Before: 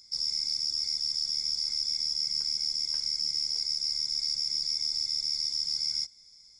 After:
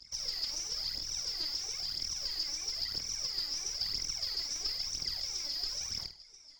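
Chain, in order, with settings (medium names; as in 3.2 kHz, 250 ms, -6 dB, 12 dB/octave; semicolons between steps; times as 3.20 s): overload inside the chain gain 34 dB; wow and flutter 130 cents; LFO high-pass saw down 7.1 Hz 360–5300 Hz; phaser 1 Hz, delay 3.6 ms, feedback 67%; RIAA curve playback; flutter echo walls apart 8.5 m, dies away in 0.3 s; trim +3 dB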